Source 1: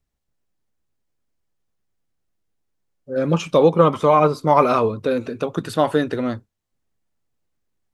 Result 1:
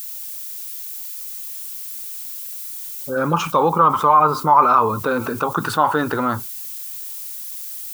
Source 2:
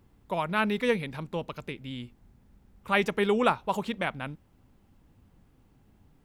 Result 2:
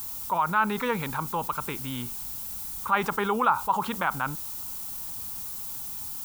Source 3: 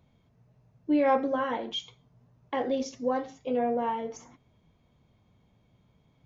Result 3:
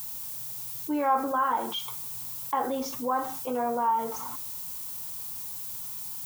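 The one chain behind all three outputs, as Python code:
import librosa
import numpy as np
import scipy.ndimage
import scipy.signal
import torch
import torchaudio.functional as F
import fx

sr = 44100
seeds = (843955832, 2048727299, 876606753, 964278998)

y = fx.band_shelf(x, sr, hz=1100.0, db=14.5, octaves=1.1)
y = fx.dmg_noise_colour(y, sr, seeds[0], colour='violet', level_db=-43.0)
y = fx.env_flatten(y, sr, amount_pct=50)
y = y * 10.0 ** (-10.5 / 20.0)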